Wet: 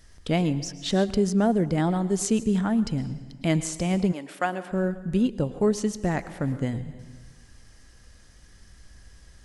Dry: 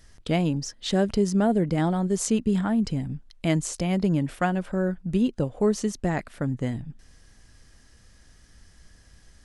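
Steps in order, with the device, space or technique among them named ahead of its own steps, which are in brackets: compressed reverb return (on a send at -3 dB: reverb RT60 0.95 s, pre-delay 0.104 s + compressor 4:1, threshold -36 dBFS, peak gain reduction 16.5 dB); 4.11–4.71 on the sum: HPF 610 Hz -> 270 Hz 12 dB/oct

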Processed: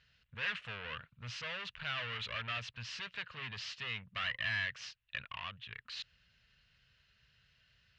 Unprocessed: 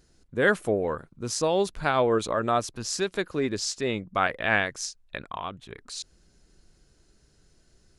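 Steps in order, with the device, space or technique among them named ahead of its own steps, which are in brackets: scooped metal amplifier (tube stage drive 34 dB, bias 0.35; speaker cabinet 88–3600 Hz, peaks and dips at 120 Hz +7 dB, 240 Hz +5 dB, 350 Hz -10 dB, 790 Hz -8 dB, 1800 Hz +5 dB, 2800 Hz +9 dB; passive tone stack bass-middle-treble 10-0-10); 4.24–4.66 comb 1 ms, depth 52%; gain +5 dB

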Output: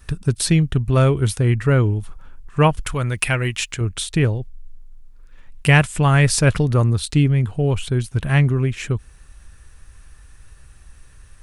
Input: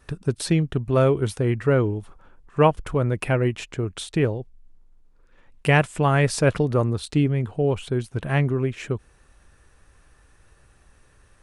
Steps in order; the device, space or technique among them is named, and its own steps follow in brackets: smiley-face EQ (low shelf 90 Hz +7.5 dB; bell 490 Hz -8 dB 2.5 oct; high shelf 8600 Hz +6 dB); 2.79–3.81 tilt shelf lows -6 dB; gain +6.5 dB

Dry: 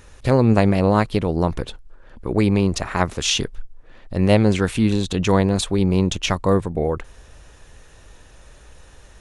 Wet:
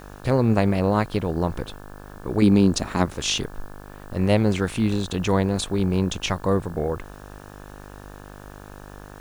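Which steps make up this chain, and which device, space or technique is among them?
2.42–3.06 graphic EQ 250/2000/4000/8000 Hz +10/-4/+5/+5 dB; video cassette with head-switching buzz (buzz 50 Hz, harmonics 35, -38 dBFS -3 dB/oct; white noise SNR 34 dB); gain -4 dB

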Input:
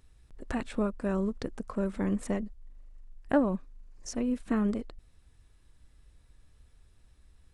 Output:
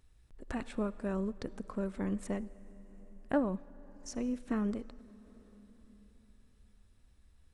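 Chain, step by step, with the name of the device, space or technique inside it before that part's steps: compressed reverb return (on a send at -11.5 dB: reverb RT60 3.1 s, pre-delay 53 ms + compressor, threshold -36 dBFS, peak gain reduction 13.5 dB); on the sum: gain -5 dB

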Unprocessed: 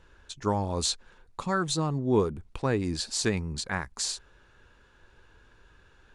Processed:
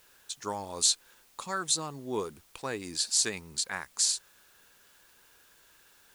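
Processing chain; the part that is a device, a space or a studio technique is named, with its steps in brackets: turntable without a phono preamp (RIAA curve recording; white noise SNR 28 dB); gain -5 dB

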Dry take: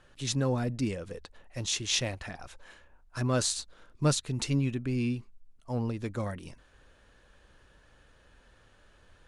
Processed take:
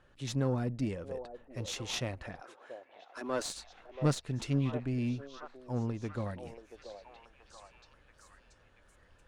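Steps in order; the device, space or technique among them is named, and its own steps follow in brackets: 2.4–3.54 steep high-pass 270 Hz; tube preamp driven hard (tube stage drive 17 dB, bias 0.6; high shelf 3100 Hz -9 dB); delay with a stepping band-pass 0.681 s, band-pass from 590 Hz, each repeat 0.7 oct, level -5.5 dB

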